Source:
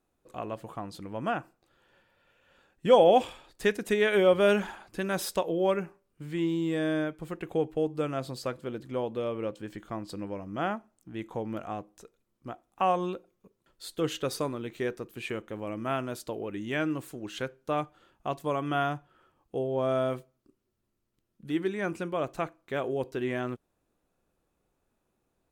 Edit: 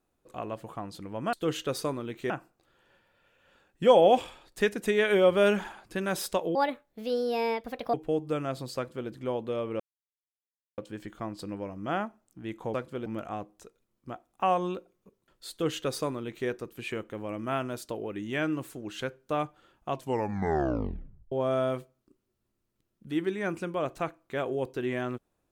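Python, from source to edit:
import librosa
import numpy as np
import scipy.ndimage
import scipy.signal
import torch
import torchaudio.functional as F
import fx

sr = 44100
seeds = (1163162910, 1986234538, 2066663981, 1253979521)

y = fx.edit(x, sr, fx.speed_span(start_s=5.58, length_s=2.04, speed=1.47),
    fx.duplicate(start_s=8.45, length_s=0.32, to_s=11.44),
    fx.insert_silence(at_s=9.48, length_s=0.98),
    fx.duplicate(start_s=13.89, length_s=0.97, to_s=1.33),
    fx.tape_stop(start_s=18.3, length_s=1.4), tone=tone)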